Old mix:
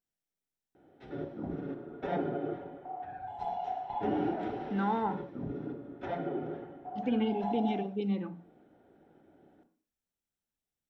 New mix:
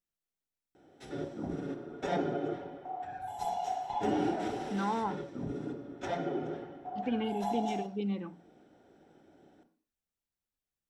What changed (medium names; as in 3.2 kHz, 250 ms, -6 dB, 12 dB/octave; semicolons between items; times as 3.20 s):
speech: send -9.0 dB; background: remove distance through air 340 m